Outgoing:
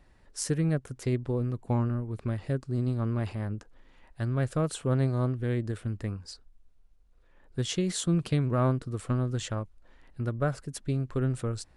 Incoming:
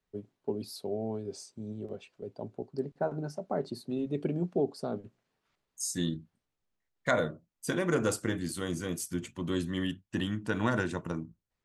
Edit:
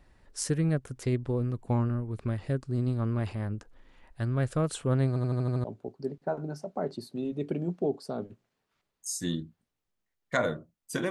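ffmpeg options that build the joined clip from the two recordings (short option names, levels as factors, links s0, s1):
-filter_complex "[0:a]apad=whole_dur=11.1,atrim=end=11.1,asplit=7[s0][s1][s2][s3][s4][s5][s6];[s0]atrim=end=5.162[s7];[s1]atrim=start=5.078:end=5.162[s8];[s2]atrim=start=5.078:end=5.162[s9];[s3]atrim=start=5.078:end=5.162[s10];[s4]atrim=start=5.078:end=5.162[s11];[s5]atrim=start=5.078:end=5.162[s12];[s6]atrim=start=5.078:end=5.162[s13];[1:a]atrim=start=2.378:end=7.84[s14];[s7][s8]acrossfade=d=0.004:c1=hsin:c2=hsin[s15];[s15][s9]acrossfade=d=0.004:c1=hsin:c2=hsin[s16];[s16][s10]acrossfade=d=0.004:c1=hsin:c2=hsin[s17];[s17][s11]acrossfade=d=0.004:c1=hsin:c2=hsin[s18];[s18][s12]acrossfade=d=0.004:c1=hsin:c2=hsin[s19];[s19][s13]acrossfade=d=0.004:c1=hsin:c2=hsin[s20];[s20][s14]acrossfade=d=0.004:c1=hsin:c2=hsin"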